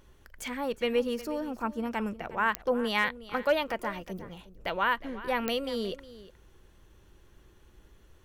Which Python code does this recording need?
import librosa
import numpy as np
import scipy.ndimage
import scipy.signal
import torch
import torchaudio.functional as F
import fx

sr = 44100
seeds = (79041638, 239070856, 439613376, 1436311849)

y = fx.fix_declick_ar(x, sr, threshold=10.0)
y = fx.fix_echo_inverse(y, sr, delay_ms=361, level_db=-16.5)